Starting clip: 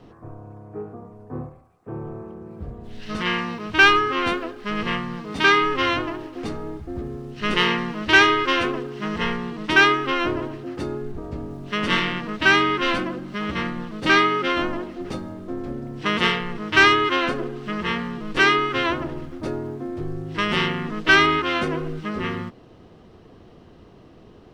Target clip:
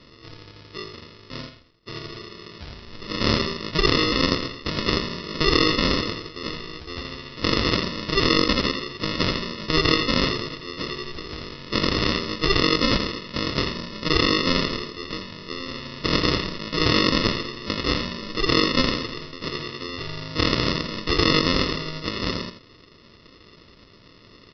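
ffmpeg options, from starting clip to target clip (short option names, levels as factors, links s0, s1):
-filter_complex "[0:a]equalizer=f=3100:t=o:w=2:g=12.5,afftfilt=real='re*lt(hypot(re,im),2.51)':imag='im*lt(hypot(re,im),2.51)':win_size=1024:overlap=0.75,alimiter=limit=0.501:level=0:latency=1:release=13,aresample=11025,acrusher=samples=14:mix=1:aa=0.000001,aresample=44100,crystalizer=i=6:c=0,asplit=2[s0][s1];[s1]aecho=0:1:84:0.355[s2];[s0][s2]amix=inputs=2:normalize=0,volume=0.501"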